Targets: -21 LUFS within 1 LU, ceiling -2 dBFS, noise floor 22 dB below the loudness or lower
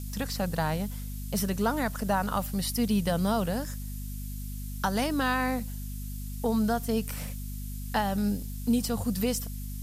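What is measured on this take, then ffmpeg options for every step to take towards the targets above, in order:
hum 50 Hz; harmonics up to 250 Hz; hum level -34 dBFS; noise floor -36 dBFS; noise floor target -52 dBFS; loudness -30.0 LUFS; peak -15.0 dBFS; loudness target -21.0 LUFS
-> -af "bandreject=f=50:t=h:w=4,bandreject=f=100:t=h:w=4,bandreject=f=150:t=h:w=4,bandreject=f=200:t=h:w=4,bandreject=f=250:t=h:w=4"
-af "afftdn=nr=16:nf=-36"
-af "volume=9dB"

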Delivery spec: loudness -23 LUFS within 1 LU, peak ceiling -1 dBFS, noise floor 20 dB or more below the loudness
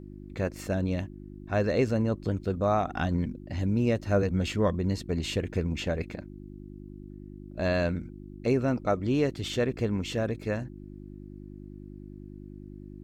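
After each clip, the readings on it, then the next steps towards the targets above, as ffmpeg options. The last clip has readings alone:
hum 50 Hz; harmonics up to 350 Hz; hum level -43 dBFS; loudness -29.0 LUFS; peak -12.5 dBFS; loudness target -23.0 LUFS
-> -af "bandreject=f=50:t=h:w=4,bandreject=f=100:t=h:w=4,bandreject=f=150:t=h:w=4,bandreject=f=200:t=h:w=4,bandreject=f=250:t=h:w=4,bandreject=f=300:t=h:w=4,bandreject=f=350:t=h:w=4"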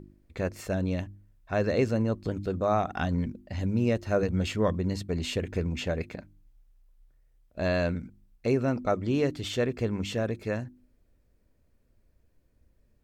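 hum none; loudness -29.5 LUFS; peak -13.5 dBFS; loudness target -23.0 LUFS
-> -af "volume=6.5dB"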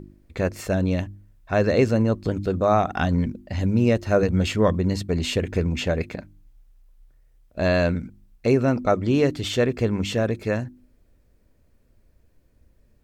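loudness -23.0 LUFS; peak -7.0 dBFS; noise floor -61 dBFS

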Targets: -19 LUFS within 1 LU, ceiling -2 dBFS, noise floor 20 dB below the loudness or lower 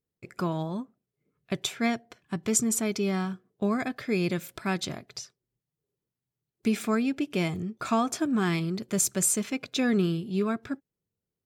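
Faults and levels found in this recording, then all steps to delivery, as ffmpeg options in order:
loudness -28.5 LUFS; peak -9.5 dBFS; loudness target -19.0 LUFS
-> -af "volume=9.5dB,alimiter=limit=-2dB:level=0:latency=1"

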